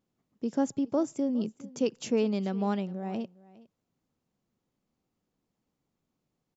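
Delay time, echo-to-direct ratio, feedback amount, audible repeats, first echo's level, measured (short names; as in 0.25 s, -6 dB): 0.41 s, -21.0 dB, no steady repeat, 1, -21.0 dB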